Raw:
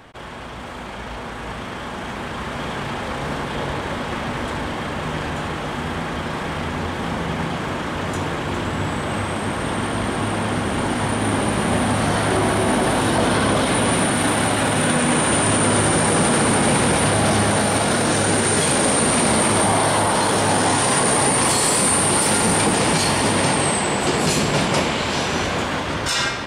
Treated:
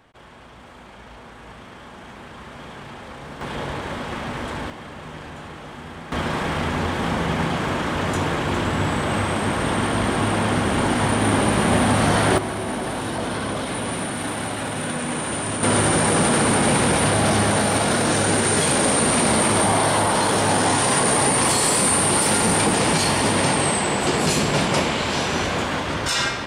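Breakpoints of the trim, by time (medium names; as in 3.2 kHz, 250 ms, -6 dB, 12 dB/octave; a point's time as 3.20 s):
-11 dB
from 3.41 s -3.5 dB
from 4.70 s -11 dB
from 6.12 s +1.5 dB
from 12.38 s -8 dB
from 15.63 s -1 dB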